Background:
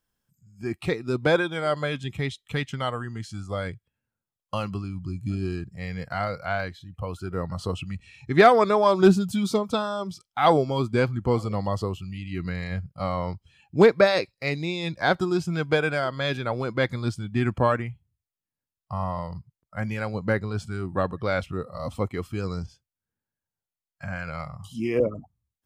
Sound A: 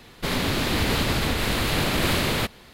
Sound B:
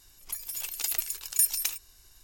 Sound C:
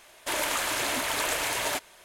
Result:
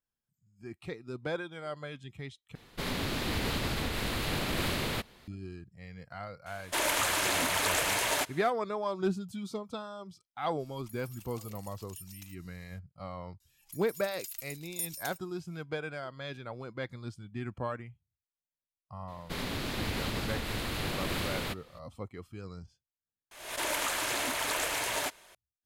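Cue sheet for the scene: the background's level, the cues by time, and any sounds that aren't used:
background −14 dB
0:02.55: overwrite with A −9 dB
0:06.46: mix in C −0.5 dB
0:10.57: mix in B −6.5 dB, fades 0.05 s + downward compressor 2 to 1, threshold −53 dBFS
0:13.40: mix in B −7 dB + guitar amp tone stack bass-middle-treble 5-5-5
0:19.07: mix in A −11 dB, fades 0.02 s
0:23.31: overwrite with C −3.5 dB + background raised ahead of every attack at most 76 dB per second

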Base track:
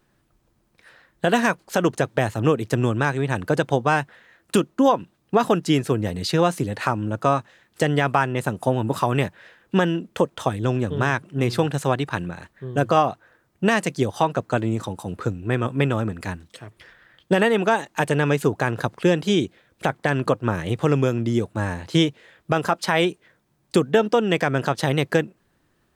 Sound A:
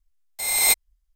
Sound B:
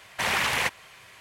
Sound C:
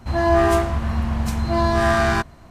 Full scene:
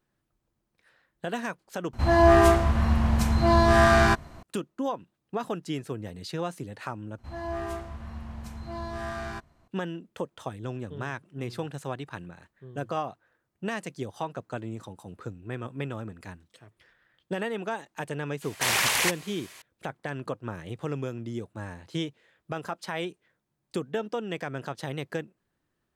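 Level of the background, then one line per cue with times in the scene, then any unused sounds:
base track −13 dB
0:01.93: overwrite with C −0.5 dB
0:07.18: overwrite with C −17 dB
0:18.42: mix in B −1.5 dB + bass and treble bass −5 dB, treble +10 dB
not used: A

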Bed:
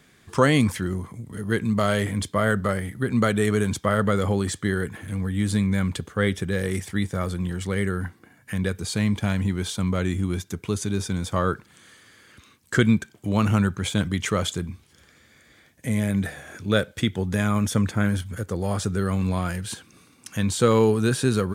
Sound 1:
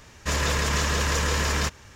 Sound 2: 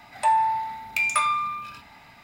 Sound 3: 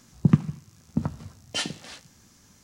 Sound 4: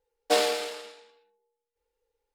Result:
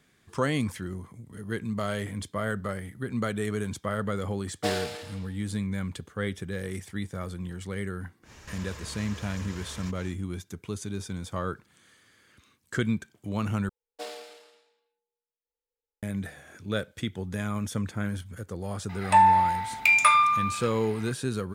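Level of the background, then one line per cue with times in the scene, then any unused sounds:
bed −8.5 dB
0:04.33: mix in 4 −6.5 dB
0:08.22: mix in 1 −1 dB, fades 0.10 s + downward compressor 8 to 1, threshold −39 dBFS
0:13.69: overwrite with 4 −16 dB
0:18.89: mix in 2 + parametric band 1,800 Hz +4.5 dB 2.5 octaves
not used: 3

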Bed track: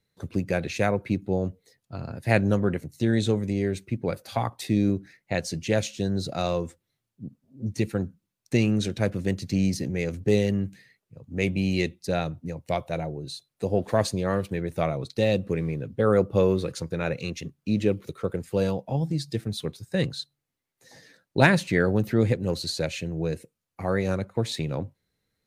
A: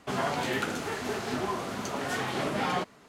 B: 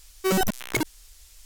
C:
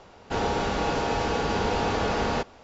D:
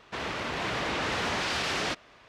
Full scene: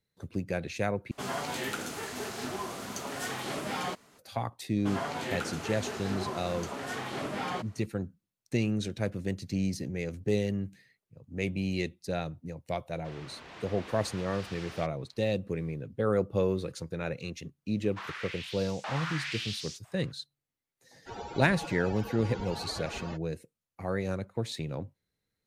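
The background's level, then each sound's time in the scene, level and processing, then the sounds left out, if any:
bed track −6.5 dB
0:01.11: overwrite with A −5.5 dB + high-shelf EQ 5,000 Hz +10 dB
0:04.78: mix in A −5 dB + downsampling to 32,000 Hz
0:12.92: mix in D −16 dB
0:17.84: mix in D −9 dB + auto-filter high-pass saw up 1 Hz 700–7,800 Hz
0:20.75: mix in C −7.5 dB + spectral dynamics exaggerated over time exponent 3
not used: B

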